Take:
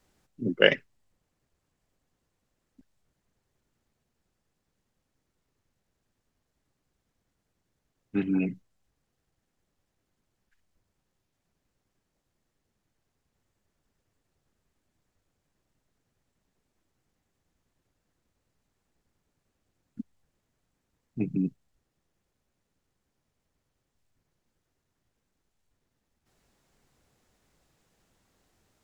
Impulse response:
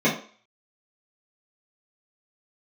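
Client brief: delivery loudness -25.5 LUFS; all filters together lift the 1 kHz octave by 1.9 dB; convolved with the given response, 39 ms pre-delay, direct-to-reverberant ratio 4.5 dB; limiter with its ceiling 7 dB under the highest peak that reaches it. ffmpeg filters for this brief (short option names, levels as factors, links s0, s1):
-filter_complex "[0:a]equalizer=f=1000:t=o:g=3,alimiter=limit=0.398:level=0:latency=1,asplit=2[s0][s1];[1:a]atrim=start_sample=2205,adelay=39[s2];[s1][s2]afir=irnorm=-1:irlink=0,volume=0.0794[s3];[s0][s3]amix=inputs=2:normalize=0,volume=1.33"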